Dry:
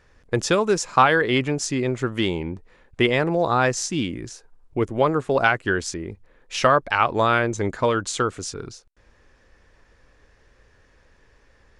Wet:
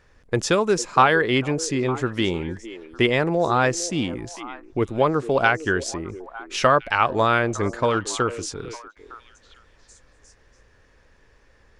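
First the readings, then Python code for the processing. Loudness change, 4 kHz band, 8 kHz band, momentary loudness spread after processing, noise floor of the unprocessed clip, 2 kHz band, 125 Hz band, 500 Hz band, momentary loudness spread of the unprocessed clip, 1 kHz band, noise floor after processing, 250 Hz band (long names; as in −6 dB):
0.0 dB, 0.0 dB, 0.0 dB, 15 LU, −58 dBFS, 0.0 dB, 0.0 dB, 0.0 dB, 14 LU, 0.0 dB, −57 dBFS, 0.0 dB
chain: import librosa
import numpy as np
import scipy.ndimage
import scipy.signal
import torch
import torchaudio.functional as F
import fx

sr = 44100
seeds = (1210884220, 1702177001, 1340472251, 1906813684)

y = fx.echo_stepped(x, sr, ms=454, hz=390.0, octaves=1.4, feedback_pct=70, wet_db=-12)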